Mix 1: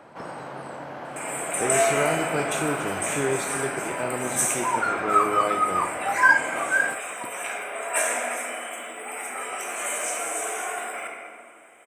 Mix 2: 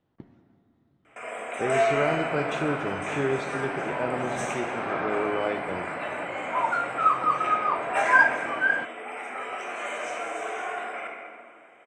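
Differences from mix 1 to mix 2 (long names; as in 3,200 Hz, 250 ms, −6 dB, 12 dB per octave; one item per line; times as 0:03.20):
second sound: entry +1.90 s
master: add high-frequency loss of the air 180 metres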